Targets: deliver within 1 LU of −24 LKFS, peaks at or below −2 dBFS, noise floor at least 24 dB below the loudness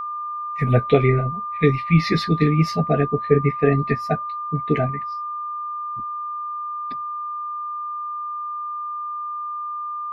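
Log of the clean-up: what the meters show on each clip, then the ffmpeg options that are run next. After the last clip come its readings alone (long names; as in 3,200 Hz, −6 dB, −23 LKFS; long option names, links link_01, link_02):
interfering tone 1,200 Hz; level of the tone −26 dBFS; integrated loudness −23.0 LKFS; sample peak −3.0 dBFS; target loudness −24.0 LKFS
→ -af "bandreject=frequency=1200:width=30"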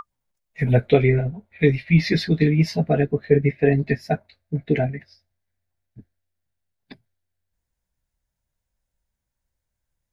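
interfering tone none found; integrated loudness −21.0 LKFS; sample peak −3.0 dBFS; target loudness −24.0 LKFS
→ -af "volume=-3dB"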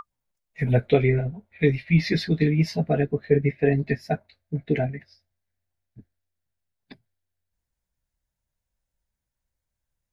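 integrated loudness −24.0 LKFS; sample peak −6.0 dBFS; background noise floor −84 dBFS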